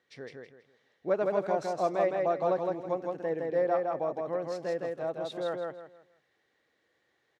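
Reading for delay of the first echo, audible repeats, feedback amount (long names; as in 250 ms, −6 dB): 162 ms, 3, 29%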